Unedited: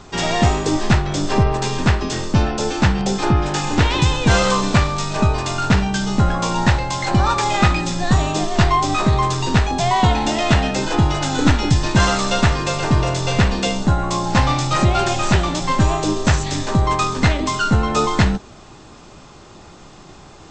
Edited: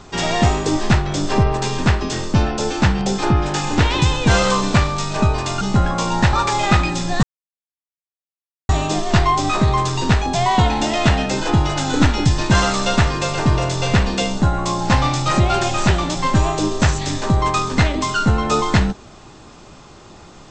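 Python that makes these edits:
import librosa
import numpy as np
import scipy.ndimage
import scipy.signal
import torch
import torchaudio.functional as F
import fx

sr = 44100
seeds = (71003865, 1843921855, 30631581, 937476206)

y = fx.edit(x, sr, fx.cut(start_s=5.61, length_s=0.44),
    fx.cut(start_s=6.77, length_s=0.47),
    fx.insert_silence(at_s=8.14, length_s=1.46), tone=tone)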